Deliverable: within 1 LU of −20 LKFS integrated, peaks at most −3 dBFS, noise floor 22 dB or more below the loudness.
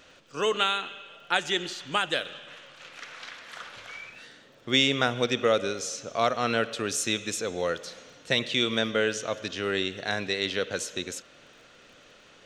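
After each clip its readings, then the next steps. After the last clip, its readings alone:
crackle rate 22 per second; integrated loudness −27.5 LKFS; sample peak −8.0 dBFS; target loudness −20.0 LKFS
→ click removal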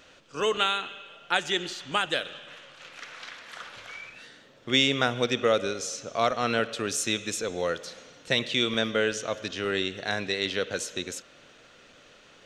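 crackle rate 0 per second; integrated loudness −27.5 LKFS; sample peak −8.0 dBFS; target loudness −20.0 LKFS
→ level +7.5 dB
brickwall limiter −3 dBFS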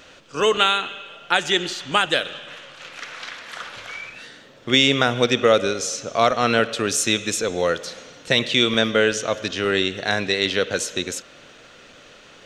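integrated loudness −20.0 LKFS; sample peak −3.0 dBFS; background noise floor −48 dBFS

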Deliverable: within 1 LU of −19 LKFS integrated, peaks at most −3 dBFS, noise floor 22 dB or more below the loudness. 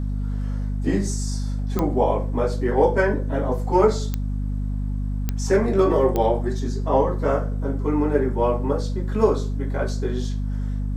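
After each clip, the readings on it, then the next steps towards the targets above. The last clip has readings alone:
number of clicks 4; mains hum 50 Hz; hum harmonics up to 250 Hz; level of the hum −22 dBFS; integrated loudness −23.0 LKFS; sample peak −4.5 dBFS; target loudness −19.0 LKFS
→ click removal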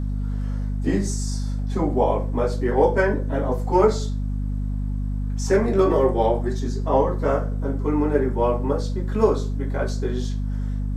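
number of clicks 0; mains hum 50 Hz; hum harmonics up to 250 Hz; level of the hum −22 dBFS
→ mains-hum notches 50/100/150/200/250 Hz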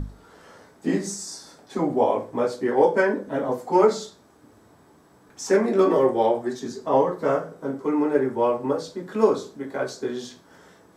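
mains hum none found; integrated loudness −23.5 LKFS; sample peak −5.0 dBFS; target loudness −19.0 LKFS
→ level +4.5 dB
brickwall limiter −3 dBFS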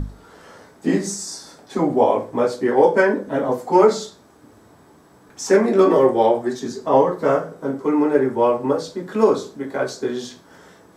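integrated loudness −19.0 LKFS; sample peak −3.0 dBFS; background noise floor −51 dBFS

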